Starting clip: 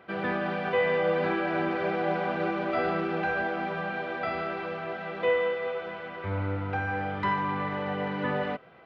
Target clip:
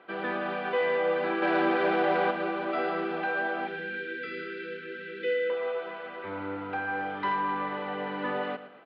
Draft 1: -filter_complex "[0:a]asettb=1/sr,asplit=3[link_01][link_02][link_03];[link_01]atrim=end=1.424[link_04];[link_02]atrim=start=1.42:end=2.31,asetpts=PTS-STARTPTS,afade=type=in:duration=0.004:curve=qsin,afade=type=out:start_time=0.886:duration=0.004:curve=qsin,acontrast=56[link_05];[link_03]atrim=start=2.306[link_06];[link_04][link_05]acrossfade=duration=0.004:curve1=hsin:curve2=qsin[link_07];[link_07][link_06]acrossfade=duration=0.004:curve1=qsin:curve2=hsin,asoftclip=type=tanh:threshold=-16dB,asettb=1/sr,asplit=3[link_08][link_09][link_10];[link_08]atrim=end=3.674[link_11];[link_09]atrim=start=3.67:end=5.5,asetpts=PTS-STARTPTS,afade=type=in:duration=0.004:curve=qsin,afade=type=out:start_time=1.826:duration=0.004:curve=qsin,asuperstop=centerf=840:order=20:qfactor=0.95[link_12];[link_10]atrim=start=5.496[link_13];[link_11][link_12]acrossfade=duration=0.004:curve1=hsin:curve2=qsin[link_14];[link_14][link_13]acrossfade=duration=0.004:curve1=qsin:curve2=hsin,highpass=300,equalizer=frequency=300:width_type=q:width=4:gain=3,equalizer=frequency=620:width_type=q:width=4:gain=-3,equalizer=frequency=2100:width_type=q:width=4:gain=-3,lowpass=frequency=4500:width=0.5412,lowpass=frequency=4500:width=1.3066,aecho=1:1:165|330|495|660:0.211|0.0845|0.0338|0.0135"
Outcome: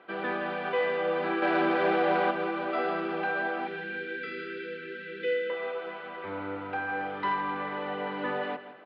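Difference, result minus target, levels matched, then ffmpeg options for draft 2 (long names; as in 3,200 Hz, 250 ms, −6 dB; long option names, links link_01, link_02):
echo 52 ms late
-filter_complex "[0:a]asettb=1/sr,asplit=3[link_01][link_02][link_03];[link_01]atrim=end=1.424[link_04];[link_02]atrim=start=1.42:end=2.31,asetpts=PTS-STARTPTS,afade=type=in:duration=0.004:curve=qsin,afade=type=out:start_time=0.886:duration=0.004:curve=qsin,acontrast=56[link_05];[link_03]atrim=start=2.306[link_06];[link_04][link_05]acrossfade=duration=0.004:curve1=hsin:curve2=qsin[link_07];[link_07][link_06]acrossfade=duration=0.004:curve1=qsin:curve2=hsin,asoftclip=type=tanh:threshold=-16dB,asettb=1/sr,asplit=3[link_08][link_09][link_10];[link_08]atrim=end=3.674[link_11];[link_09]atrim=start=3.67:end=5.5,asetpts=PTS-STARTPTS,afade=type=in:duration=0.004:curve=qsin,afade=type=out:start_time=1.826:duration=0.004:curve=qsin,asuperstop=centerf=840:order=20:qfactor=0.95[link_12];[link_10]atrim=start=5.496[link_13];[link_11][link_12]acrossfade=duration=0.004:curve1=hsin:curve2=qsin[link_14];[link_14][link_13]acrossfade=duration=0.004:curve1=qsin:curve2=hsin,highpass=300,equalizer=frequency=300:width_type=q:width=4:gain=3,equalizer=frequency=620:width_type=q:width=4:gain=-3,equalizer=frequency=2100:width_type=q:width=4:gain=-3,lowpass=frequency=4500:width=0.5412,lowpass=frequency=4500:width=1.3066,aecho=1:1:113|226|339|452:0.211|0.0845|0.0338|0.0135"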